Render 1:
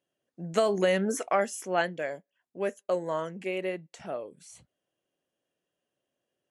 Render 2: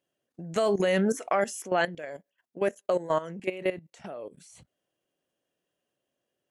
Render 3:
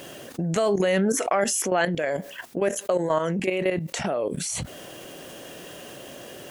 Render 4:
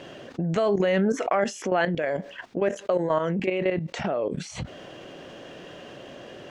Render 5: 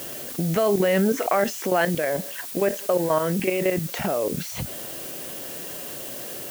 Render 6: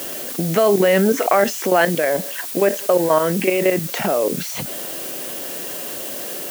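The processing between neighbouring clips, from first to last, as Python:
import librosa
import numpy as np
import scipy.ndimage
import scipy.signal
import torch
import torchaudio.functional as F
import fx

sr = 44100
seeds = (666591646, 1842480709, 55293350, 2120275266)

y1 = fx.level_steps(x, sr, step_db=15)
y1 = y1 * 10.0 ** (6.5 / 20.0)
y2 = fx.env_flatten(y1, sr, amount_pct=70)
y2 = y2 * 10.0 ** (2.0 / 20.0)
y3 = fx.air_absorb(y2, sr, metres=160.0)
y4 = fx.dmg_noise_colour(y3, sr, seeds[0], colour='blue', level_db=-38.0)
y4 = y4 * 10.0 ** (2.0 / 20.0)
y5 = scipy.signal.sosfilt(scipy.signal.butter(2, 190.0, 'highpass', fs=sr, output='sos'), y4)
y5 = y5 * 10.0 ** (6.0 / 20.0)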